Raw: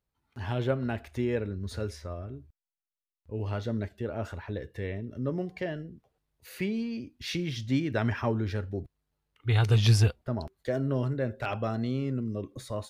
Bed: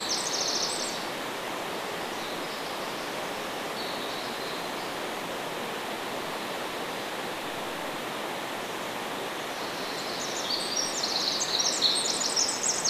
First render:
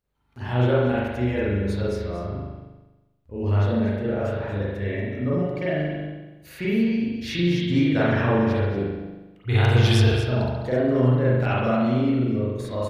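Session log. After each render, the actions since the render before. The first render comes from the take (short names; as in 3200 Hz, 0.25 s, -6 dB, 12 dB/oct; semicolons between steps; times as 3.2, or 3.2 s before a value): echo 0.234 s -10.5 dB; spring tank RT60 1.1 s, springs 40 ms, chirp 30 ms, DRR -8 dB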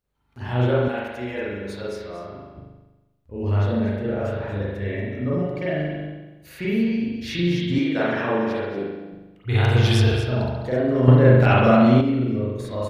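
0.88–2.56 HPF 480 Hz 6 dB/oct; 7.78–9.12 HPF 240 Hz; 11.08–12.01 gain +7 dB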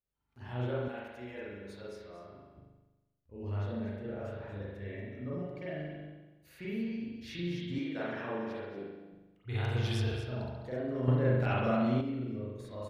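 gain -14.5 dB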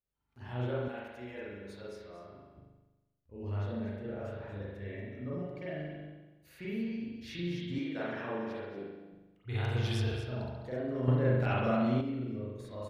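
nothing audible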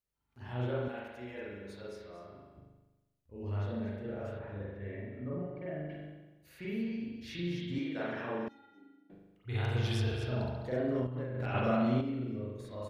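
4.38–5.88 LPF 2800 Hz -> 1500 Hz; 8.48–9.1 resonator 280 Hz, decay 0.19 s, harmonics odd, mix 100%; 10.21–11.55 negative-ratio compressor -34 dBFS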